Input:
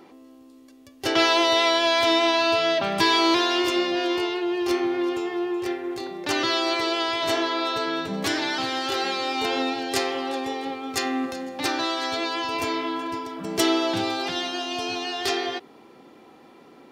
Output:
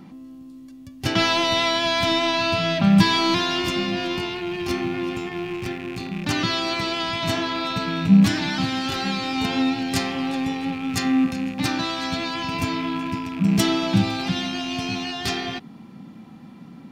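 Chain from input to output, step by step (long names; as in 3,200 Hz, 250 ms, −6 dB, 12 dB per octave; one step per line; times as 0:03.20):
loose part that buzzes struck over −42 dBFS, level −26 dBFS
low shelf with overshoot 280 Hz +12.5 dB, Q 3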